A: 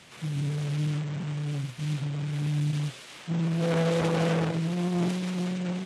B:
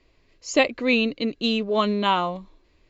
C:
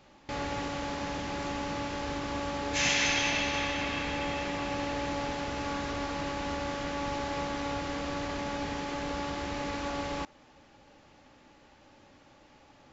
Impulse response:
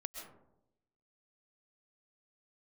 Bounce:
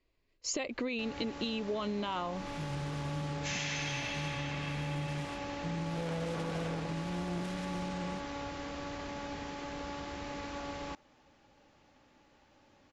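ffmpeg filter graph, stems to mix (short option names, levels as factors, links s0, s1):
-filter_complex "[0:a]adelay=2350,volume=0.376[s0];[1:a]alimiter=limit=0.168:level=0:latency=1:release=47,volume=1.06[s1];[2:a]adelay=700,volume=0.473[s2];[s0][s1]amix=inputs=2:normalize=0,agate=range=0.158:threshold=0.00316:ratio=16:detection=peak,acompressor=threshold=0.0501:ratio=3,volume=1[s3];[s2][s3]amix=inputs=2:normalize=0,acompressor=threshold=0.0251:ratio=6"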